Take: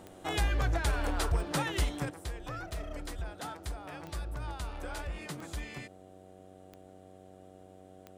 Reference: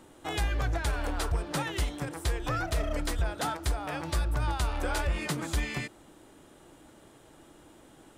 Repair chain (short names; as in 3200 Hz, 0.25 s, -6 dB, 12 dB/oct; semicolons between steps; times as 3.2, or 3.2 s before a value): de-click; de-hum 93.9 Hz, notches 8; gain correction +9.5 dB, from 2.1